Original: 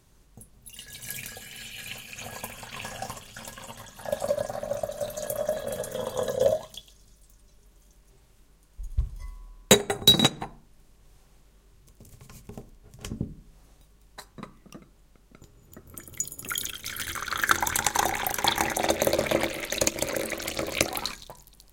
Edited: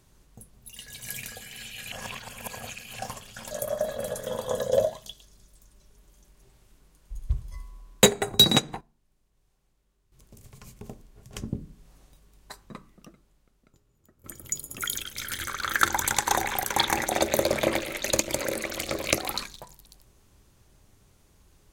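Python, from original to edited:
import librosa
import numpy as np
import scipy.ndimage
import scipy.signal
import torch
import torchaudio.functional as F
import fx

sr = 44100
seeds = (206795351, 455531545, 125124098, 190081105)

y = fx.edit(x, sr, fx.reverse_span(start_s=1.92, length_s=1.07),
    fx.cut(start_s=3.51, length_s=1.68),
    fx.fade_down_up(start_s=10.0, length_s=2.29, db=-14.5, fade_s=0.49, curve='log'),
    fx.fade_out_to(start_s=14.26, length_s=1.66, curve='qua', floor_db=-14.0), tone=tone)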